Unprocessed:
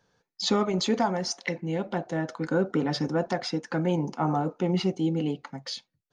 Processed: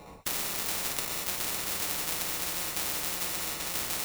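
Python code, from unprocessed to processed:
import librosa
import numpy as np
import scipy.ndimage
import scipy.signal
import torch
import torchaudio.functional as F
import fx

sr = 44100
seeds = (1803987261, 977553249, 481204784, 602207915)

p1 = fx.env_lowpass_down(x, sr, base_hz=1700.0, full_db=-23.5)
p2 = fx.highpass(p1, sr, hz=960.0, slope=6)
p3 = fx.high_shelf(p2, sr, hz=2200.0, db=11.5)
p4 = fx.level_steps(p3, sr, step_db=11)
p5 = p3 + (p4 * librosa.db_to_amplitude(1.0))
p6 = fx.stretch_grains(p5, sr, factor=0.66, grain_ms=174.0)
p7 = fx.sample_hold(p6, sr, seeds[0], rate_hz=1600.0, jitter_pct=0)
p8 = p7 + fx.echo_single(p7, sr, ms=1136, db=-6.0, dry=0)
p9 = fx.rev_fdn(p8, sr, rt60_s=1.1, lf_ratio=1.0, hf_ratio=0.6, size_ms=97.0, drr_db=-3.0)
y = fx.spectral_comp(p9, sr, ratio=10.0)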